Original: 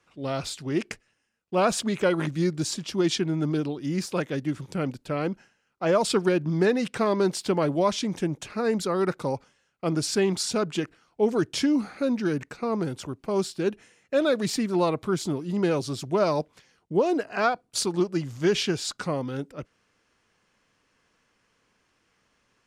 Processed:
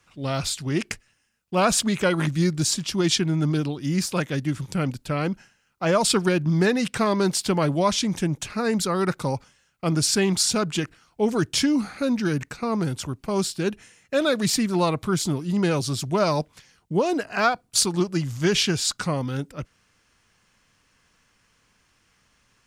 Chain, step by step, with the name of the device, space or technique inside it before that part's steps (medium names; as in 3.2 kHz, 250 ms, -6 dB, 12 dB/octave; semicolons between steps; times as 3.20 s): smiley-face EQ (bass shelf 140 Hz +6.5 dB; peaking EQ 410 Hz -6 dB 1.7 oct; treble shelf 6.2 kHz +6.5 dB); trim +4.5 dB